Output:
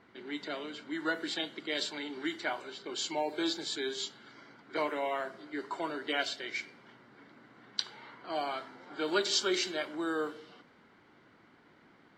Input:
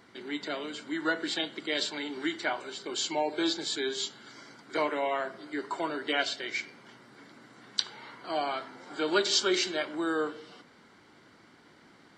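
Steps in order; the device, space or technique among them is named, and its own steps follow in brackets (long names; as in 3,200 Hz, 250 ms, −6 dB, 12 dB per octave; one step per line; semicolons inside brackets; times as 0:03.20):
cassette deck with a dynamic noise filter (white noise bed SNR 32 dB; low-pass that shuts in the quiet parts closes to 2,700 Hz, open at −25.5 dBFS)
level −3.5 dB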